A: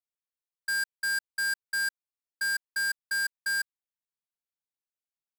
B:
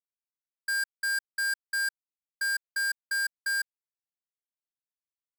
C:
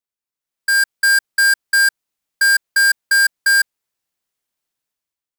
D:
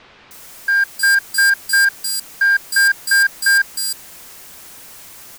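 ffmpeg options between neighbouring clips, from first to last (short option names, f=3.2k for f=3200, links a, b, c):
-af "anlmdn=1,highpass=f=770:w=0.5412,highpass=f=770:w=1.3066"
-af "dynaudnorm=f=130:g=9:m=11.5dB,volume=4dB"
-filter_complex "[0:a]aeval=exprs='val(0)+0.5*0.0355*sgn(val(0))':c=same,acrossover=split=3700[a][b];[b]adelay=310[c];[a][c]amix=inputs=2:normalize=0"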